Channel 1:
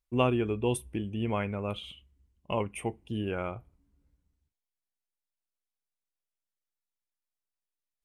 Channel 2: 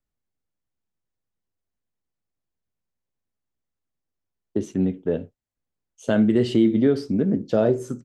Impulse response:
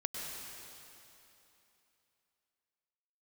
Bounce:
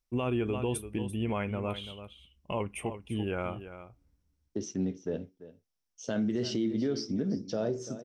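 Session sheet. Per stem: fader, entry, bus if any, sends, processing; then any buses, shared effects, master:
0.0 dB, 0.00 s, no send, echo send -12.5 dB, dry
-9.0 dB, 0.00 s, no send, echo send -17 dB, synth low-pass 5600 Hz, resonance Q 9.1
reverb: off
echo: echo 0.339 s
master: limiter -22 dBFS, peak gain reduction 10 dB

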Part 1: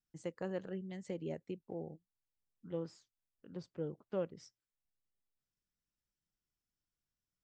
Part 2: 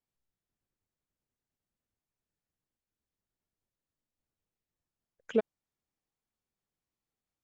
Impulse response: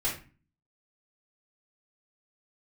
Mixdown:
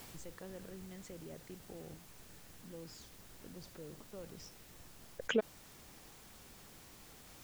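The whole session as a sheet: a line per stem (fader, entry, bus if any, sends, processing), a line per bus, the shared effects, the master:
-14.0 dB, 0.00 s, no send, fast leveller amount 70%
+0.5 dB, 0.00 s, no send, fast leveller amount 70%; auto duck -6 dB, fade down 0.25 s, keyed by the first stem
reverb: off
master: dry

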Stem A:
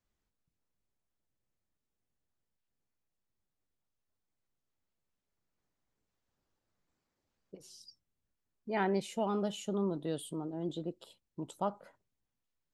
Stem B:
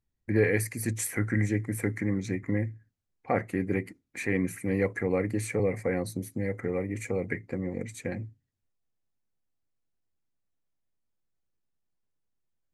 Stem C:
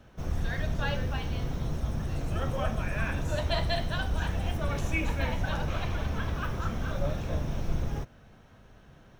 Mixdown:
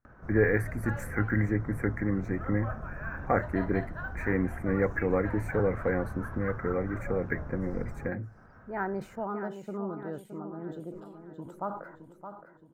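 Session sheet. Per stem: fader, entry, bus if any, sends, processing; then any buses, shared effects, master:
-3.0 dB, 0.00 s, no send, echo send -9.5 dB, sustainer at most 85 dB/s
-0.5 dB, 0.00 s, no send, no echo send, dry
-9.0 dB, 0.05 s, no send, no echo send, upward compressor, threshold -36 dBFS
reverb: off
echo: feedback echo 0.618 s, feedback 46%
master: resonant high shelf 2200 Hz -13.5 dB, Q 3; decimation joined by straight lines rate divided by 2×

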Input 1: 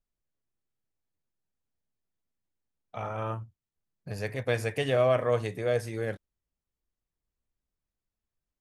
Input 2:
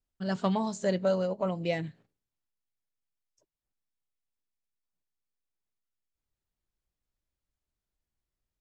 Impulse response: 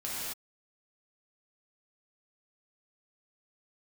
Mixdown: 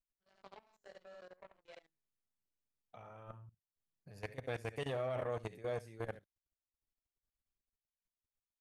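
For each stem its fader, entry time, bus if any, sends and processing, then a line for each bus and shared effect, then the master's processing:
-5.0 dB, 0.00 s, no send, echo send -13.5 dB, dry
-12.0 dB, 0.00 s, no send, echo send -7.5 dB, HPF 380 Hz 12 dB/oct; chorus 0.5 Hz, delay 18.5 ms, depth 4.1 ms; added harmonics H 3 -15 dB, 7 -25 dB, 8 -33 dB, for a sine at -18.5 dBFS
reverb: off
echo: echo 71 ms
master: level quantiser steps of 18 dB; core saturation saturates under 740 Hz

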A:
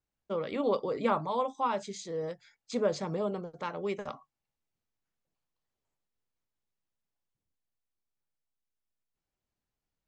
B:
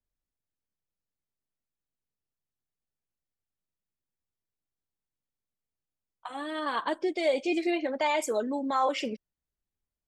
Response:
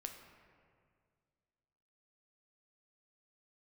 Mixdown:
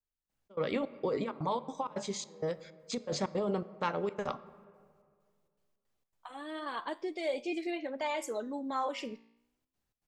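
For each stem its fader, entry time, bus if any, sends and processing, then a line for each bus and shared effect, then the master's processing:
-1.5 dB, 0.20 s, send -3.5 dB, negative-ratio compressor -33 dBFS, ratio -1; step gate ".xx.xxx..xxx.xx" 162 bpm -24 dB
-3.0 dB, 0.00 s, no send, flange 0.27 Hz, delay 8.3 ms, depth 9.4 ms, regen +87%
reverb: on, RT60 2.0 s, pre-delay 7 ms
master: dry

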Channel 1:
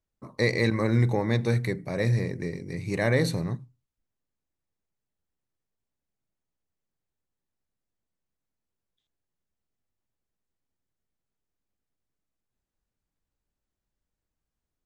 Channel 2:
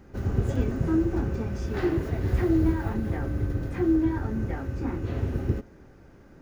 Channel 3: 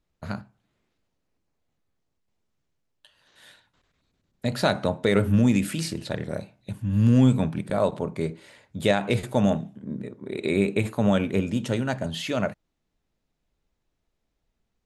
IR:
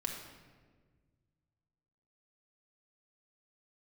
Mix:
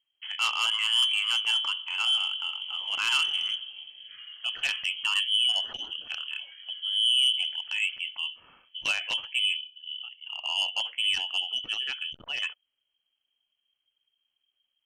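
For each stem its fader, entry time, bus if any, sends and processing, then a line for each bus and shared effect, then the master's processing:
-2.5 dB, 0.00 s, send -17 dB, dry
-18.0 dB, 2.35 s, send -7.5 dB, endless phaser +0.84 Hz
-5.5 dB, 0.00 s, no send, spectral gate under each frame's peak -30 dB strong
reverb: on, RT60 1.5 s, pre-delay 4 ms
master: inverted band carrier 3200 Hz; core saturation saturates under 3700 Hz

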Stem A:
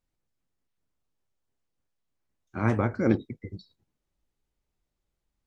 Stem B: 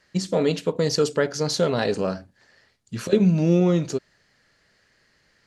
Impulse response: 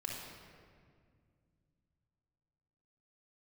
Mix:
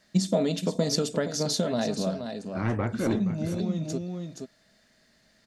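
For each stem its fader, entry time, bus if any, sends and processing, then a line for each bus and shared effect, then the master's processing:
-0.5 dB, 0.00 s, no send, echo send -13.5 dB, soft clip -18 dBFS, distortion -13 dB
-5.5 dB, 0.00 s, no send, echo send -10.5 dB, compressor, threshold -21 dBFS, peak gain reduction 8.5 dB; high shelf 4900 Hz +11 dB; small resonant body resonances 220/640/3600 Hz, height 13 dB, ringing for 35 ms; auto duck -7 dB, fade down 1.25 s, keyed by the first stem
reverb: off
echo: echo 0.473 s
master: dry

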